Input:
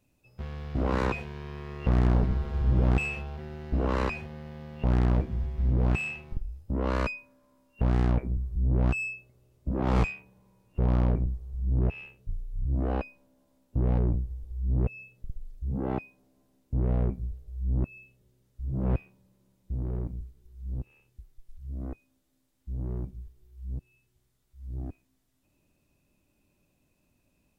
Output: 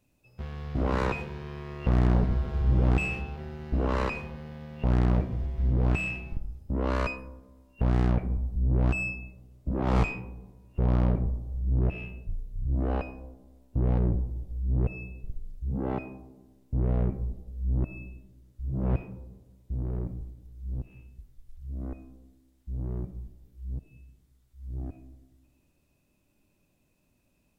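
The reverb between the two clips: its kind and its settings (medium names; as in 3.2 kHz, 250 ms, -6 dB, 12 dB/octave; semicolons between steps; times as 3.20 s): algorithmic reverb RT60 1.1 s, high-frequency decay 0.25×, pre-delay 20 ms, DRR 12.5 dB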